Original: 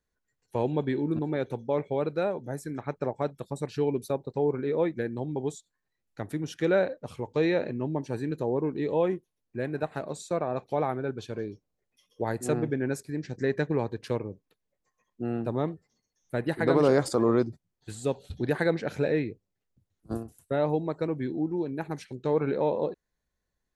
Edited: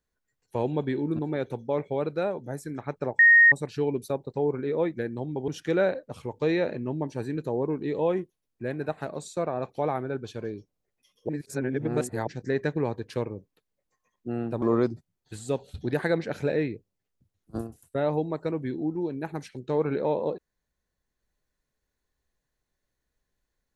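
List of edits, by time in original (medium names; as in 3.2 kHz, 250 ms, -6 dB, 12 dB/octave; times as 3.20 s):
3.19–3.52 s: bleep 1.86 kHz -12 dBFS
5.48–6.42 s: delete
12.23–13.21 s: reverse
15.56–17.18 s: delete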